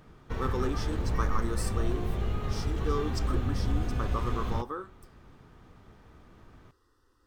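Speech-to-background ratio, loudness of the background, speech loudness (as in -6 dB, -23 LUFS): -4.0 dB, -33.0 LUFS, -37.0 LUFS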